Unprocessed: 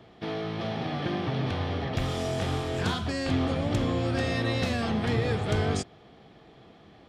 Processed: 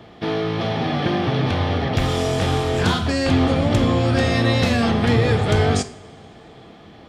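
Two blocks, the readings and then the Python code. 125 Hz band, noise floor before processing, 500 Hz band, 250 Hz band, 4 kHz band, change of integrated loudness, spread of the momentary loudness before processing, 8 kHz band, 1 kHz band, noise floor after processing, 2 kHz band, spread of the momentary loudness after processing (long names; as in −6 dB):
+9.5 dB, −54 dBFS, +9.5 dB, +9.5 dB, +9.5 dB, +9.5 dB, 5 LU, +9.5 dB, +9.5 dB, −44 dBFS, +9.0 dB, 5 LU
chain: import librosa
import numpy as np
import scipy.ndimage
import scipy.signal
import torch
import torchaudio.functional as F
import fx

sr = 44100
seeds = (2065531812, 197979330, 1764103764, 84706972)

p1 = np.clip(x, -10.0 ** (-20.5 / 20.0), 10.0 ** (-20.5 / 20.0))
p2 = x + F.gain(torch.from_numpy(p1), -10.0).numpy()
p3 = fx.rev_double_slope(p2, sr, seeds[0], early_s=0.45, late_s=2.8, knee_db=-20, drr_db=9.5)
y = F.gain(torch.from_numpy(p3), 6.5).numpy()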